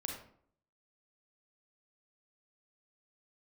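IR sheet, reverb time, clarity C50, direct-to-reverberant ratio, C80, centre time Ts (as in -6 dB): 0.60 s, 3.5 dB, 1.0 dB, 7.5 dB, 34 ms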